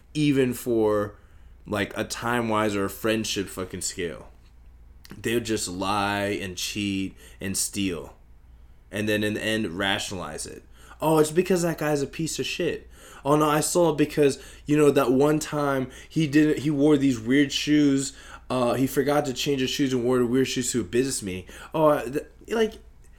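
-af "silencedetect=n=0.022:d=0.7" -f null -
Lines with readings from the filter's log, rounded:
silence_start: 4.21
silence_end: 5.05 | silence_duration: 0.84
silence_start: 8.07
silence_end: 8.93 | silence_duration: 0.86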